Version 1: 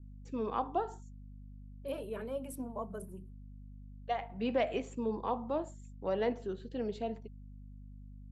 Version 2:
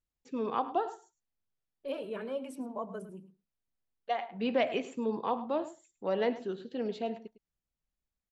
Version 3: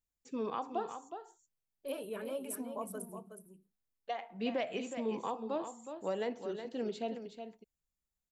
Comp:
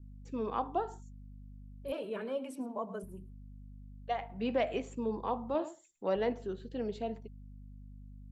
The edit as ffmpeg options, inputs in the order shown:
ffmpeg -i take0.wav -i take1.wav -filter_complex "[1:a]asplit=2[link_01][link_02];[0:a]asplit=3[link_03][link_04][link_05];[link_03]atrim=end=1.922[link_06];[link_01]atrim=start=1.918:end=3.032[link_07];[link_04]atrim=start=3.028:end=5.552[link_08];[link_02]atrim=start=5.548:end=6.162[link_09];[link_05]atrim=start=6.158[link_10];[link_06][link_07]acrossfade=duration=0.004:curve1=hsin:curve2=hsin[link_11];[link_11][link_08]acrossfade=duration=0.004:curve1=hsin:curve2=hsin[link_12];[link_12][link_09]acrossfade=duration=0.004:curve1=hsin:curve2=hsin[link_13];[link_13][link_10]acrossfade=duration=0.004:curve1=hsin:curve2=hsin" out.wav

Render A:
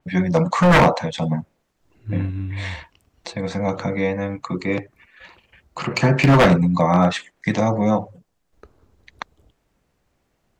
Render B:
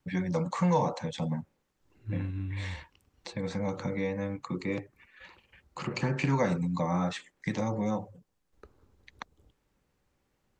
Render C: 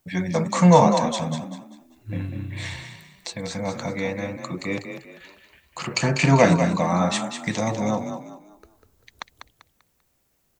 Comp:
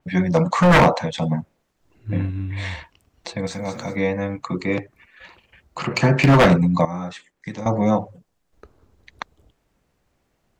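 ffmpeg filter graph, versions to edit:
ffmpeg -i take0.wav -i take1.wav -i take2.wav -filter_complex "[0:a]asplit=3[link_01][link_02][link_03];[link_01]atrim=end=3.472[link_04];[2:a]atrim=start=3.468:end=3.962[link_05];[link_02]atrim=start=3.958:end=6.852[link_06];[1:a]atrim=start=6.848:end=7.662[link_07];[link_03]atrim=start=7.658[link_08];[link_04][link_05]acrossfade=duration=0.004:curve1=hsin:curve2=hsin[link_09];[link_09][link_06]acrossfade=duration=0.004:curve1=hsin:curve2=hsin[link_10];[link_10][link_07]acrossfade=duration=0.004:curve1=hsin:curve2=hsin[link_11];[link_11][link_08]acrossfade=duration=0.004:curve1=hsin:curve2=hsin" out.wav

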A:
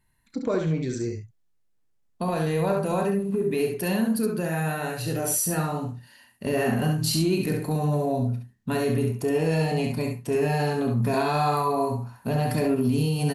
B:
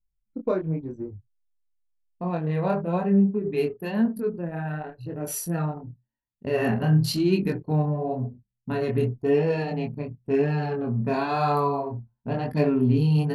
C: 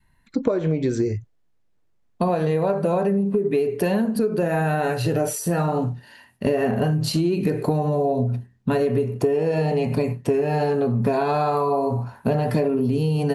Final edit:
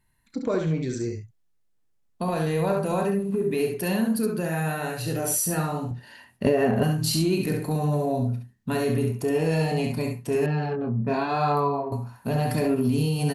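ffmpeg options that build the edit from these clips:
ffmpeg -i take0.wav -i take1.wav -i take2.wav -filter_complex "[0:a]asplit=3[link_01][link_02][link_03];[link_01]atrim=end=5.912[link_04];[2:a]atrim=start=5.908:end=6.832[link_05];[link_02]atrim=start=6.828:end=10.462[link_06];[1:a]atrim=start=10.458:end=11.922[link_07];[link_03]atrim=start=11.918[link_08];[link_04][link_05]acrossfade=duration=0.004:curve1=hsin:curve2=hsin[link_09];[link_09][link_06]acrossfade=duration=0.004:curve1=hsin:curve2=hsin[link_10];[link_10][link_07]acrossfade=duration=0.004:curve1=hsin:curve2=hsin[link_11];[link_11][link_08]acrossfade=duration=0.004:curve1=hsin:curve2=hsin" out.wav

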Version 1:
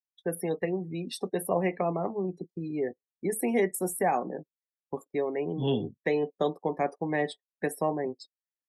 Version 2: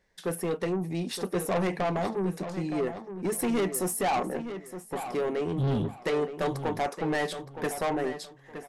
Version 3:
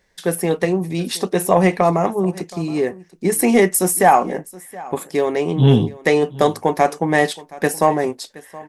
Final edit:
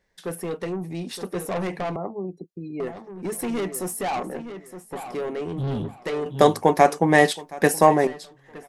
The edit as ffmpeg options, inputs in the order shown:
ffmpeg -i take0.wav -i take1.wav -i take2.wav -filter_complex "[1:a]asplit=3[link_01][link_02][link_03];[link_01]atrim=end=1.962[link_04];[0:a]atrim=start=1.958:end=2.802[link_05];[link_02]atrim=start=2.798:end=6.262[link_06];[2:a]atrim=start=6.258:end=8.072[link_07];[link_03]atrim=start=8.068[link_08];[link_04][link_05]acrossfade=duration=0.004:curve1=hsin:curve2=hsin[link_09];[link_09][link_06]acrossfade=duration=0.004:curve1=hsin:curve2=hsin[link_10];[link_10][link_07]acrossfade=duration=0.004:curve1=hsin:curve2=hsin[link_11];[link_11][link_08]acrossfade=duration=0.004:curve1=hsin:curve2=hsin" out.wav

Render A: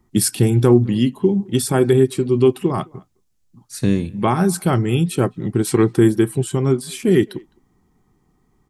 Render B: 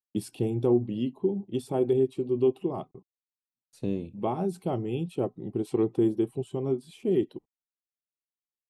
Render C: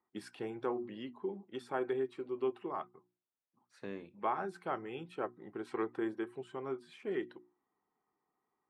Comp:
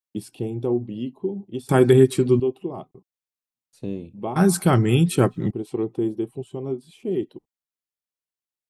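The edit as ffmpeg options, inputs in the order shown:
ffmpeg -i take0.wav -i take1.wav -filter_complex "[0:a]asplit=2[link_01][link_02];[1:a]asplit=3[link_03][link_04][link_05];[link_03]atrim=end=1.692[link_06];[link_01]atrim=start=1.688:end=2.402[link_07];[link_04]atrim=start=2.398:end=4.362[link_08];[link_02]atrim=start=4.358:end=5.512[link_09];[link_05]atrim=start=5.508[link_10];[link_06][link_07]acrossfade=duration=0.004:curve1=hsin:curve2=hsin[link_11];[link_11][link_08]acrossfade=duration=0.004:curve1=hsin:curve2=hsin[link_12];[link_12][link_09]acrossfade=duration=0.004:curve1=hsin:curve2=hsin[link_13];[link_13][link_10]acrossfade=duration=0.004:curve1=hsin:curve2=hsin" out.wav

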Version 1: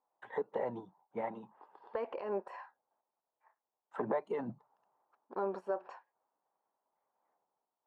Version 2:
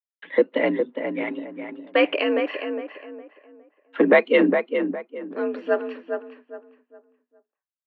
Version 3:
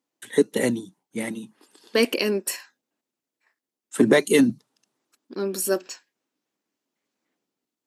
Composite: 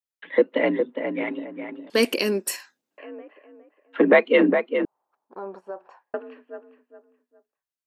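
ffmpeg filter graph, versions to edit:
ffmpeg -i take0.wav -i take1.wav -i take2.wav -filter_complex "[1:a]asplit=3[link_01][link_02][link_03];[link_01]atrim=end=1.902[link_04];[2:a]atrim=start=1.898:end=2.982[link_05];[link_02]atrim=start=2.978:end=4.852[link_06];[0:a]atrim=start=4.848:end=6.142[link_07];[link_03]atrim=start=6.138[link_08];[link_04][link_05]acrossfade=duration=0.004:curve1=hsin:curve2=hsin[link_09];[link_09][link_06]acrossfade=duration=0.004:curve1=hsin:curve2=hsin[link_10];[link_10][link_07]acrossfade=duration=0.004:curve1=hsin:curve2=hsin[link_11];[link_11][link_08]acrossfade=duration=0.004:curve1=hsin:curve2=hsin" out.wav

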